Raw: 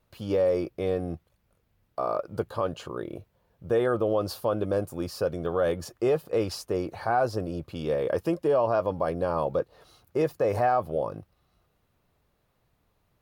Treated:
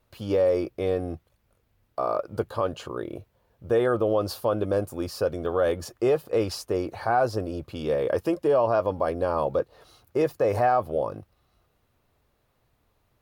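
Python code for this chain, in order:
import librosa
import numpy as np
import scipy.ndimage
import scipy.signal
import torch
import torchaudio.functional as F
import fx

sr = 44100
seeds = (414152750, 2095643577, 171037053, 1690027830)

y = fx.peak_eq(x, sr, hz=170.0, db=-10.0, octaves=0.2)
y = y * librosa.db_to_amplitude(2.0)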